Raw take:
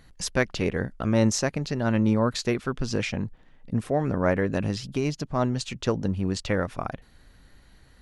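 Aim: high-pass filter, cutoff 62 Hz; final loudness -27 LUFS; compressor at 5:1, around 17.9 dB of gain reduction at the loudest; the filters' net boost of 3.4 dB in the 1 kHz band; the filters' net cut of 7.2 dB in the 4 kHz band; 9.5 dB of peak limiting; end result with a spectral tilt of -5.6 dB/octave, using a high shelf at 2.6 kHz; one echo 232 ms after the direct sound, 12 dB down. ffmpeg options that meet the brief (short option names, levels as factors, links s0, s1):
-af "highpass=62,equalizer=f=1000:t=o:g=5.5,highshelf=f=2600:g=-5,equalizer=f=4000:t=o:g=-5,acompressor=threshold=0.0126:ratio=5,alimiter=level_in=2.99:limit=0.0631:level=0:latency=1,volume=0.335,aecho=1:1:232:0.251,volume=7.94"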